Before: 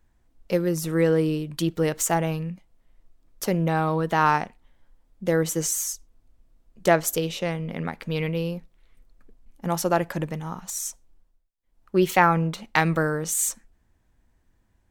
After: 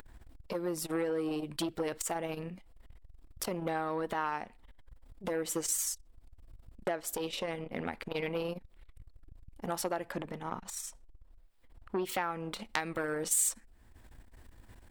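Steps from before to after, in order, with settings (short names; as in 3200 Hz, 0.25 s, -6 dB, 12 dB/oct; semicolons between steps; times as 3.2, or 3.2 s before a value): thirty-one-band EQ 160 Hz -12 dB, 6300 Hz -8 dB, 12500 Hz -7 dB; compressor 16:1, threshold -28 dBFS, peak gain reduction 17 dB; high shelf 4300 Hz +2 dB, from 10.12 s -6 dB, from 12.05 s +5 dB; upward compressor, threshold -37 dBFS; core saturation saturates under 2600 Hz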